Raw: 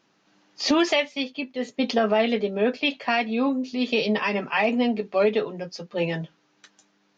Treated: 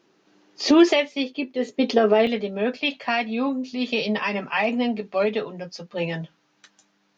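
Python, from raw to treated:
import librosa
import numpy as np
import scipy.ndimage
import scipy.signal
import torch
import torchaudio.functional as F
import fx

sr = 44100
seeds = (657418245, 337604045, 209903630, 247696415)

y = fx.peak_eq(x, sr, hz=380.0, db=fx.steps((0.0, 10.0), (2.27, -3.5)), octaves=0.71)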